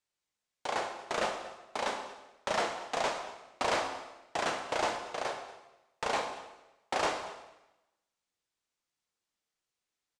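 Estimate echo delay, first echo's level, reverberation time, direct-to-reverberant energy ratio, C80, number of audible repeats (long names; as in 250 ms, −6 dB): 233 ms, −19.0 dB, 0.95 s, 4.5 dB, 9.0 dB, 1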